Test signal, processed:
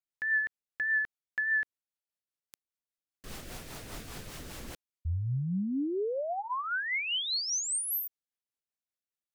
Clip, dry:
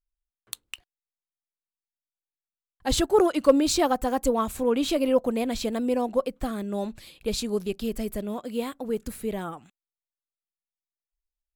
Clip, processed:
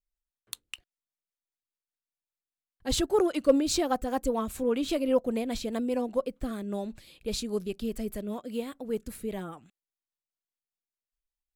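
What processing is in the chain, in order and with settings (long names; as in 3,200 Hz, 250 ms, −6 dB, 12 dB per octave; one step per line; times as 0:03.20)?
rotating-speaker cabinet horn 5 Hz
level −2 dB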